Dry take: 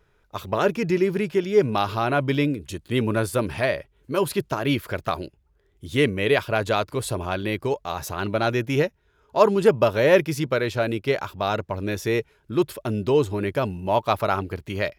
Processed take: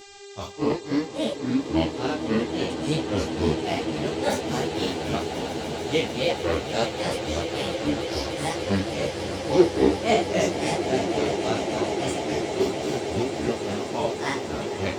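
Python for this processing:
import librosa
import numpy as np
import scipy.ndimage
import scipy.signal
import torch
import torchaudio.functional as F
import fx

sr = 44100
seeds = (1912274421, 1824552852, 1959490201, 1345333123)

y = fx.spec_trails(x, sr, decay_s=2.23)
y = fx.high_shelf_res(y, sr, hz=7900.0, db=-8.0, q=3.0)
y = fx.granulator(y, sr, seeds[0], grain_ms=262.0, per_s=3.6, spray_ms=100.0, spread_st=7)
y = fx.echo_swell(y, sr, ms=148, loudest=8, wet_db=-13)
y = fx.dmg_buzz(y, sr, base_hz=400.0, harmonics=20, level_db=-39.0, tilt_db=-4, odd_only=False)
y = fx.peak_eq(y, sr, hz=1300.0, db=-8.5, octaves=1.4)
y = fx.ensemble(y, sr)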